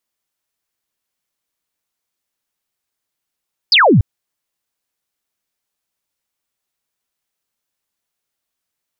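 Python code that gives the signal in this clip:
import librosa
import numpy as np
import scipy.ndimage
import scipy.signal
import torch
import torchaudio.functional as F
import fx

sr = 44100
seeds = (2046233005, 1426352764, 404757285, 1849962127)

y = fx.laser_zap(sr, level_db=-6.5, start_hz=5200.0, end_hz=84.0, length_s=0.29, wave='sine')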